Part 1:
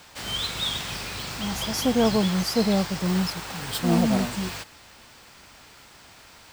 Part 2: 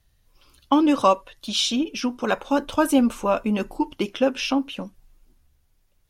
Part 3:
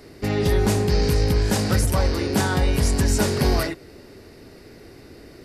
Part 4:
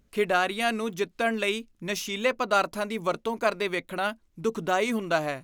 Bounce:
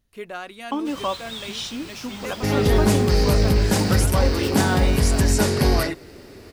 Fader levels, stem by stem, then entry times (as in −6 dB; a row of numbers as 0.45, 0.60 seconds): −7.5, −8.5, +1.5, −10.0 decibels; 0.70, 0.00, 2.20, 0.00 seconds